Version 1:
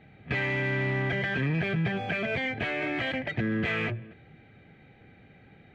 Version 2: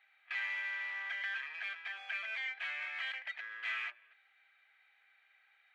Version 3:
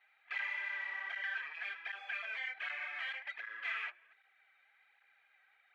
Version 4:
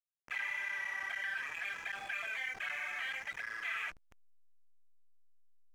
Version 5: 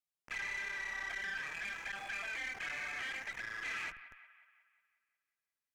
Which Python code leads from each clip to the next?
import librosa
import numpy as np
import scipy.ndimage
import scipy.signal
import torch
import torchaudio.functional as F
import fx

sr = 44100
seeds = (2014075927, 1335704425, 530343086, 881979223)

y1 = scipy.signal.sosfilt(scipy.signal.butter(4, 1100.0, 'highpass', fs=sr, output='sos'), x)
y1 = y1 * librosa.db_to_amplitude(-6.5)
y2 = fx.high_shelf(y1, sr, hz=2200.0, db=-9.0)
y2 = fx.flanger_cancel(y2, sr, hz=1.3, depth_ms=6.4)
y2 = y2 * librosa.db_to_amplitude(6.0)
y3 = fx.backlash(y2, sr, play_db=-48.5)
y3 = fx.env_flatten(y3, sr, amount_pct=50)
y4 = fx.echo_wet_bandpass(y3, sr, ms=181, feedback_pct=53, hz=1400.0, wet_db=-15)
y4 = fx.tube_stage(y4, sr, drive_db=35.0, bias=0.35)
y4 = y4 * librosa.db_to_amplitude(1.0)